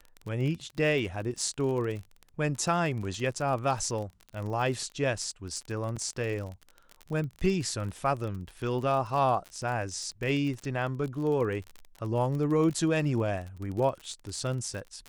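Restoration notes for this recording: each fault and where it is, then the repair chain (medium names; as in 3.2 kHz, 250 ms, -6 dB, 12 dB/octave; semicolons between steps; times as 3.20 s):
crackle 36 per s -34 dBFS
5.96–5.97 s: dropout 6.3 ms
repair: de-click; interpolate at 5.96 s, 6.3 ms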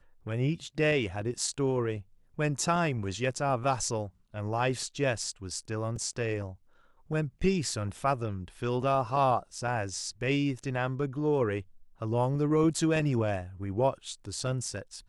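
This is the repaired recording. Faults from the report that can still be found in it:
nothing left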